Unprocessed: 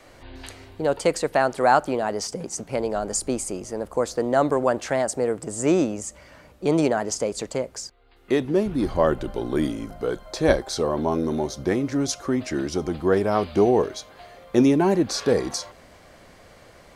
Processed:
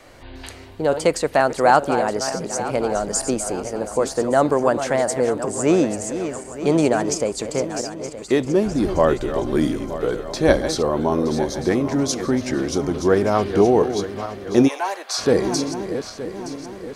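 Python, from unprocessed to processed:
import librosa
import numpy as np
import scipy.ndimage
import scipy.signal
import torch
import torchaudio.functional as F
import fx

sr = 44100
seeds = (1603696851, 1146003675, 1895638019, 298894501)

y = fx.reverse_delay_fb(x, sr, ms=460, feedback_pct=64, wet_db=-10)
y = fx.highpass(y, sr, hz=690.0, slope=24, at=(14.67, 15.17), fade=0.02)
y = F.gain(torch.from_numpy(y), 3.0).numpy()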